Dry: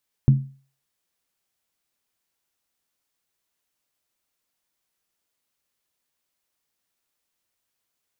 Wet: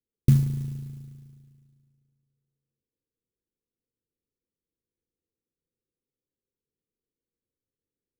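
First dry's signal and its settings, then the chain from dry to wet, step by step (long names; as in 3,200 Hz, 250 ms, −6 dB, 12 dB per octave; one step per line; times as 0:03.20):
struck skin, lowest mode 136 Hz, decay 0.39 s, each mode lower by 11 dB, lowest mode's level −8 dB
Butterworth low-pass 520 Hz 96 dB per octave
spring reverb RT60 2.1 s, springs 36 ms, DRR 6.5 dB
converter with an unsteady clock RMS 0.062 ms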